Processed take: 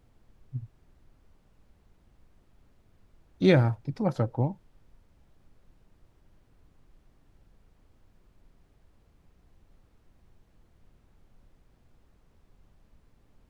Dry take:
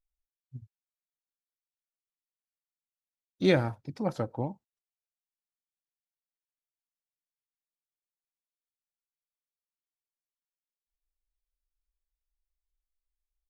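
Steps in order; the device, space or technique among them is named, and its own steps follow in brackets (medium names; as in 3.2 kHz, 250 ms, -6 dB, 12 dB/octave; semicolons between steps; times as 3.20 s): car interior (peaking EQ 120 Hz +7 dB 0.94 oct; treble shelf 4.9 kHz -5.5 dB; brown noise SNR 23 dB); trim +2 dB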